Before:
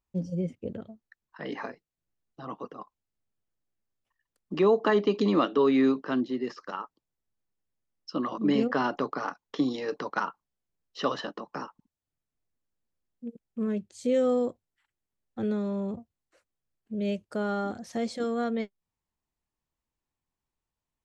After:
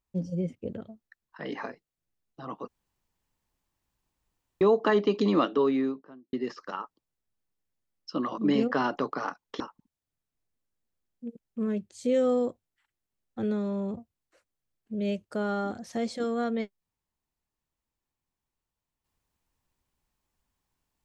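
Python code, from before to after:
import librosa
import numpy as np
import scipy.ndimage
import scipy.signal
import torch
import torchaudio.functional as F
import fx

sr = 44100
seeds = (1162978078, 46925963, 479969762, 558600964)

y = fx.studio_fade_out(x, sr, start_s=5.38, length_s=0.95)
y = fx.edit(y, sr, fx.room_tone_fill(start_s=2.68, length_s=1.93),
    fx.cut(start_s=9.6, length_s=2.0), tone=tone)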